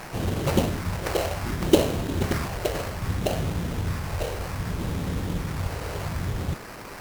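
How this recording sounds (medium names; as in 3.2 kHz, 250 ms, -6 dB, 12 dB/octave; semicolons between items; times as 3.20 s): a quantiser's noise floor 6-bit, dither triangular; phasing stages 4, 0.64 Hz, lowest notch 210–3200 Hz; aliases and images of a low sample rate 3.5 kHz, jitter 20%; WMA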